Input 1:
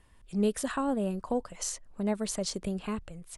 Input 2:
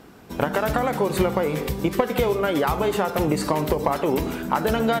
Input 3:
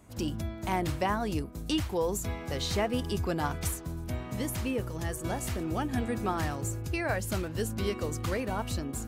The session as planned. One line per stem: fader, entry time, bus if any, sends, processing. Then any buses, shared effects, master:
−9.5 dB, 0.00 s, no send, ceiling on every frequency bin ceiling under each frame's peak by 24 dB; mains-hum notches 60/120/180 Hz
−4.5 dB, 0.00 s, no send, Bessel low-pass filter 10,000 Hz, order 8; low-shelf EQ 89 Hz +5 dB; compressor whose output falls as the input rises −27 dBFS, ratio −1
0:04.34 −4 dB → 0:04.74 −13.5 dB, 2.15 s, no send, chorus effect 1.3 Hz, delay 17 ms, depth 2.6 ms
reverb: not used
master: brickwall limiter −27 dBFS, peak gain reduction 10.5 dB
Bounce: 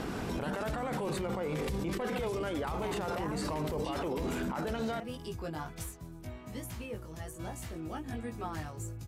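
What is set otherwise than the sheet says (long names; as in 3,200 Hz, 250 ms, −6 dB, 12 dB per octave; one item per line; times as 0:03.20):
stem 2 −4.5 dB → +6.0 dB
stem 3 −4.0 dB → +4.0 dB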